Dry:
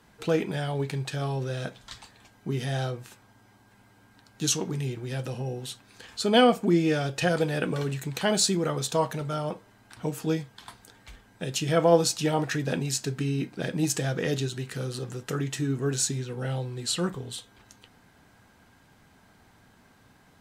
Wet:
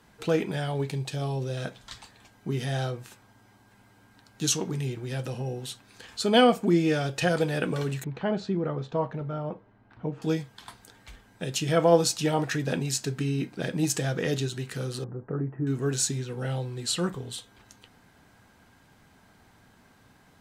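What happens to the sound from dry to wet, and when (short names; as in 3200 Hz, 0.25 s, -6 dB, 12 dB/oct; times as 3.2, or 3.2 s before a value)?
0.89–1.57 bell 1500 Hz -8 dB 0.9 oct
8.04–10.22 tape spacing loss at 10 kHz 44 dB
15.04–15.67 Gaussian blur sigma 7.1 samples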